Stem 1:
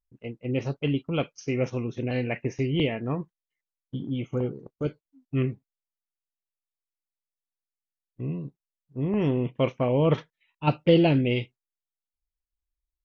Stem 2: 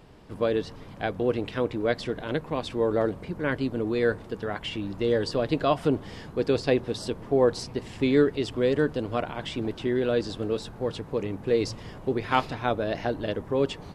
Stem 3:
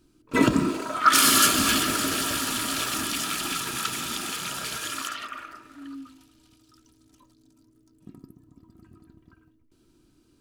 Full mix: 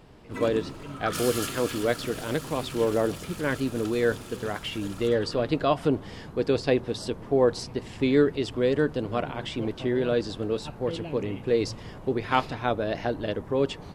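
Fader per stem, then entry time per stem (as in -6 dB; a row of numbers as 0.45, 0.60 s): -17.0, 0.0, -15.0 dB; 0.00, 0.00, 0.00 s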